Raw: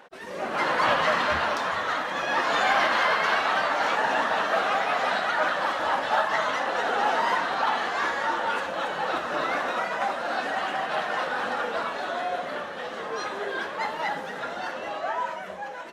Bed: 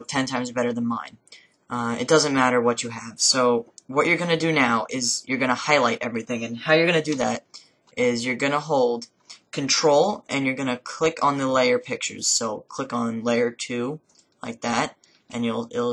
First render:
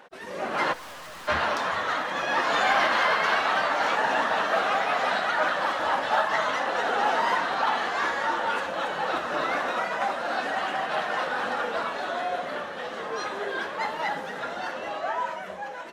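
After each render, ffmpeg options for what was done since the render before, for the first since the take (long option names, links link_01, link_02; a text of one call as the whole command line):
ffmpeg -i in.wav -filter_complex "[0:a]asplit=3[link_01][link_02][link_03];[link_01]afade=type=out:start_time=0.72:duration=0.02[link_04];[link_02]aeval=exprs='(tanh(112*val(0)+0.35)-tanh(0.35))/112':channel_layout=same,afade=type=in:start_time=0.72:duration=0.02,afade=type=out:start_time=1.27:duration=0.02[link_05];[link_03]afade=type=in:start_time=1.27:duration=0.02[link_06];[link_04][link_05][link_06]amix=inputs=3:normalize=0" out.wav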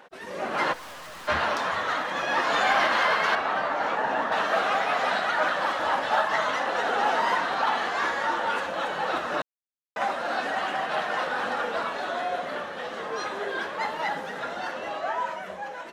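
ffmpeg -i in.wav -filter_complex "[0:a]asettb=1/sr,asplit=3[link_01][link_02][link_03];[link_01]atrim=end=3.354[link_04];[link_02]atrim=start=3.35:end=4.32,asetpts=PTS-STARTPTS,afade=type=in:duration=0.004:curve=qsin,afade=type=out:start_time=0.966:duration=0.004:curve=qsin,highshelf=frequency=2300:gain=-11[link_05];[link_03]atrim=start=4.316[link_06];[link_04][link_05]acrossfade=duration=0.004:curve1=hsin:curve2=qsin[link_07];[link_07][link_06]acrossfade=duration=0.004:curve1=qsin:curve2=hsin,asplit=3[link_08][link_09][link_10];[link_08]atrim=end=9.42,asetpts=PTS-STARTPTS,afade=type=out:start_time=9.416:duration=0.004:curve=hsin[link_11];[link_09]atrim=start=9.42:end=9.96,asetpts=PTS-STARTPTS,volume=0[link_12];[link_10]atrim=start=9.96,asetpts=PTS-STARTPTS,afade=type=in:duration=0.004:curve=hsin[link_13];[link_11][link_12][link_13]concat=n=3:v=0:a=1" out.wav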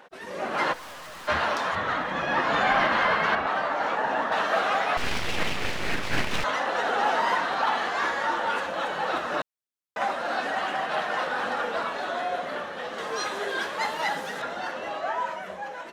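ffmpeg -i in.wav -filter_complex "[0:a]asettb=1/sr,asplit=3[link_01][link_02][link_03];[link_01]atrim=end=1.754[link_04];[link_02]atrim=start=1.75:end=3.47,asetpts=PTS-STARTPTS,afade=type=in:duration=0.004:curve=qsin,afade=type=out:start_time=1.716:duration=0.004:curve=qsin,bass=frequency=250:gain=10,treble=frequency=4000:gain=-8[link_05];[link_03]atrim=start=3.466[link_06];[link_04][link_05]acrossfade=duration=0.004:curve1=hsin:curve2=qsin[link_07];[link_07][link_06]acrossfade=duration=0.004:curve1=qsin:curve2=hsin,asettb=1/sr,asplit=3[link_08][link_09][link_10];[link_08]atrim=end=4.974[link_11];[link_09]atrim=start=4.97:end=6.44,asetpts=PTS-STARTPTS,afade=type=in:duration=0.004:curve=qsin,afade=type=out:start_time=1.466:duration=0.004:curve=qsin,aeval=exprs='abs(val(0))':channel_layout=same[link_12];[link_10]atrim=start=6.436[link_13];[link_11][link_12]acrossfade=duration=0.004:curve1=hsin:curve2=qsin[link_14];[link_14][link_13]acrossfade=duration=0.004:curve1=qsin:curve2=hsin,asettb=1/sr,asplit=3[link_15][link_16][link_17];[link_15]atrim=end=12.984[link_18];[link_16]atrim=start=12.98:end=14.42,asetpts=PTS-STARTPTS,afade=type=in:duration=0.004:curve=qsin,afade=type=out:start_time=1.436:duration=0.004:curve=qsin,highshelf=frequency=3800:gain=10.5[link_19];[link_17]atrim=start=14.416[link_20];[link_18][link_19]acrossfade=duration=0.004:curve1=hsin:curve2=qsin[link_21];[link_21][link_20]acrossfade=duration=0.004:curve1=qsin:curve2=hsin" out.wav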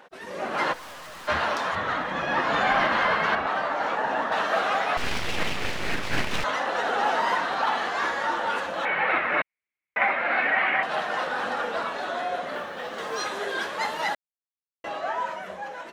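ffmpeg -i in.wav -filter_complex "[0:a]asettb=1/sr,asplit=3[link_01][link_02][link_03];[link_01]atrim=end=8.854[link_04];[link_02]atrim=start=8.85:end=10.83,asetpts=PTS-STARTPTS,afade=type=in:duration=0.004:curve=qsin,afade=type=out:start_time=1.976:duration=0.004:curve=qsin,lowpass=frequency=2200:width_type=q:width=8.7[link_05];[link_03]atrim=start=10.826[link_06];[link_04][link_05]acrossfade=duration=0.004:curve1=hsin:curve2=qsin[link_07];[link_07][link_06]acrossfade=duration=0.004:curve1=qsin:curve2=hsin,asettb=1/sr,asplit=3[link_08][link_09][link_10];[link_08]atrim=end=12.544[link_11];[link_09]atrim=start=12.54:end=13.23,asetpts=PTS-STARTPTS,afade=type=in:duration=0.004:curve=qsin,afade=type=out:start_time=0.686:duration=0.004:curve=qsin,acrusher=bits=8:mode=log:mix=0:aa=0.000001[link_12];[link_10]atrim=start=13.226[link_13];[link_11][link_12]acrossfade=duration=0.004:curve1=hsin:curve2=qsin[link_14];[link_14][link_13]acrossfade=duration=0.004:curve1=qsin:curve2=hsin,asplit=3[link_15][link_16][link_17];[link_15]atrim=end=14.15,asetpts=PTS-STARTPTS,afade=type=out:start_time=14.146:duration=0.004:curve=hsin[link_18];[link_16]atrim=start=14.15:end=14.84,asetpts=PTS-STARTPTS,volume=0[link_19];[link_17]atrim=start=14.84,asetpts=PTS-STARTPTS,afade=type=in:duration=0.004:curve=hsin[link_20];[link_18][link_19][link_20]concat=n=3:v=0:a=1" out.wav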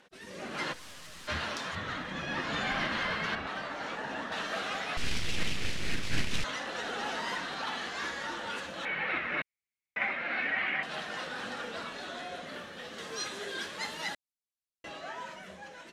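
ffmpeg -i in.wav -af "lowpass=11000,equalizer=frequency=830:width_type=o:width=2.5:gain=-14.5" out.wav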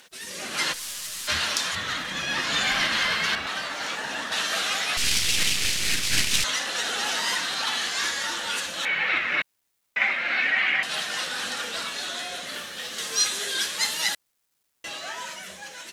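ffmpeg -i in.wav -af "crystalizer=i=8.5:c=0,acrusher=bits=10:mix=0:aa=0.000001" out.wav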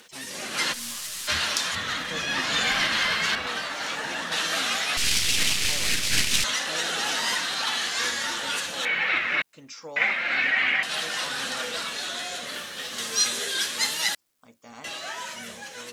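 ffmpeg -i in.wav -i bed.wav -filter_complex "[1:a]volume=-22dB[link_01];[0:a][link_01]amix=inputs=2:normalize=0" out.wav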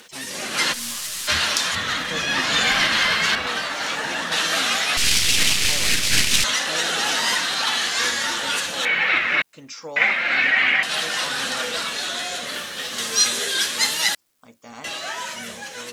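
ffmpeg -i in.wav -af "volume=5dB,alimiter=limit=-2dB:level=0:latency=1" out.wav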